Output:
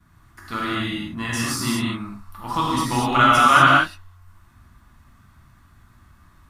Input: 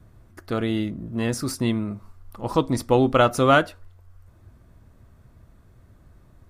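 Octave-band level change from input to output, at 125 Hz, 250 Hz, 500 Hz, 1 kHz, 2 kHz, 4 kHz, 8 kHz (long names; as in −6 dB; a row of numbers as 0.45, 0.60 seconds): −0.5, −1.0, −7.0, +8.0, +9.0, +7.5, +6.5 decibels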